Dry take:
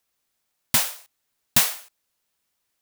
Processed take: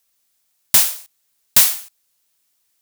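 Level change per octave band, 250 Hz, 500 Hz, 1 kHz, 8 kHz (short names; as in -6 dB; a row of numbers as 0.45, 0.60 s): -4.0, +1.5, +0.5, +7.5 dB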